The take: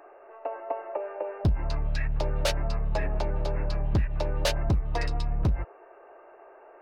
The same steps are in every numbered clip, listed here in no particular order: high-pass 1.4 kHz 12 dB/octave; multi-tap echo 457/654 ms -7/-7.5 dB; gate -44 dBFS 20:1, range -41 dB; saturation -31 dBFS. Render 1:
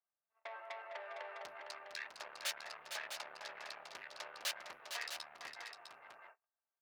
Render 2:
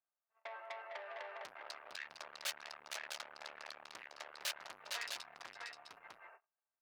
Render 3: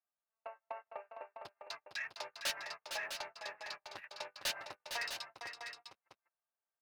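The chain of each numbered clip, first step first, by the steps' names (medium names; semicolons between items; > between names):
saturation > multi-tap echo > gate > high-pass; multi-tap echo > gate > saturation > high-pass; high-pass > gate > saturation > multi-tap echo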